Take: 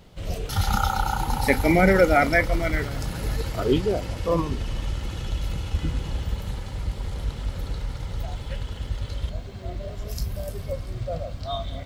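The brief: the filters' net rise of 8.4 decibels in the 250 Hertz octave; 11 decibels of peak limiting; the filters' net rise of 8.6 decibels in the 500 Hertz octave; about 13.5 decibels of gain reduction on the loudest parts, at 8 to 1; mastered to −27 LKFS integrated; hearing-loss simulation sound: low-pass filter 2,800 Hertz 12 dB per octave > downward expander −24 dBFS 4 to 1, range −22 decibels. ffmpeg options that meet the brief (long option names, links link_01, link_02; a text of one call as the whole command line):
ffmpeg -i in.wav -af "equalizer=frequency=250:width_type=o:gain=9,equalizer=frequency=500:width_type=o:gain=8,acompressor=threshold=-18dB:ratio=8,alimiter=limit=-17.5dB:level=0:latency=1,lowpass=2800,agate=range=-22dB:threshold=-24dB:ratio=4,volume=2.5dB" out.wav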